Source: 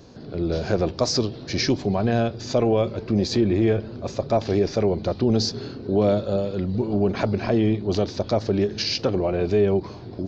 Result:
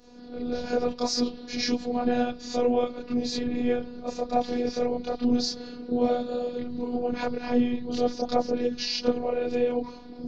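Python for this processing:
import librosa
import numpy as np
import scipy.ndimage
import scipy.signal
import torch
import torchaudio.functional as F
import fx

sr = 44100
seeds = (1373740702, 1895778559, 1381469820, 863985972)

y = fx.hum_notches(x, sr, base_hz=50, count=4)
y = fx.chorus_voices(y, sr, voices=6, hz=1.0, base_ms=28, depth_ms=4.2, mix_pct=60)
y = fx.robotise(y, sr, hz=244.0)
y = F.gain(torch.from_numpy(y), 1.0).numpy()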